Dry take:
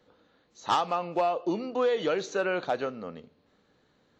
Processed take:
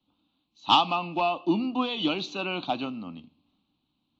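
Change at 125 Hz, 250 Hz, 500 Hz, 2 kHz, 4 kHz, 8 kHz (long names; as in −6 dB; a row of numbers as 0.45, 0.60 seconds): +5.0 dB, +6.0 dB, −5.5 dB, +1.5 dB, +11.0 dB, can't be measured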